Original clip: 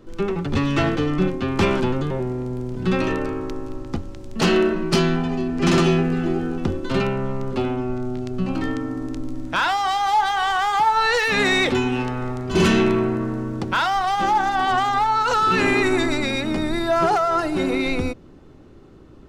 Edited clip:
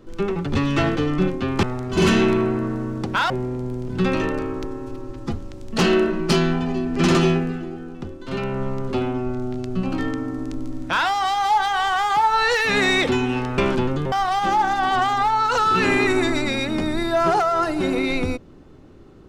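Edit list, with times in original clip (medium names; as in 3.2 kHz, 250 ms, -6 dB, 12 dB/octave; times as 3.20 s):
1.63–2.17 s: swap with 12.21–13.88 s
3.51–3.99 s: stretch 1.5×
5.93–7.25 s: dip -9.5 dB, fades 0.36 s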